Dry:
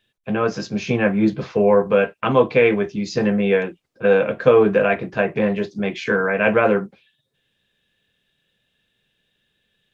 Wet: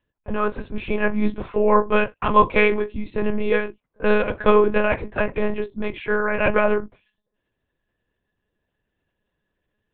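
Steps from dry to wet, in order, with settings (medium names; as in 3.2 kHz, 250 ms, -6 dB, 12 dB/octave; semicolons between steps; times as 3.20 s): level-controlled noise filter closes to 1.3 kHz, open at -12 dBFS; monotone LPC vocoder at 8 kHz 210 Hz; peaking EQ 1 kHz +8 dB 0.23 oct; trim -2 dB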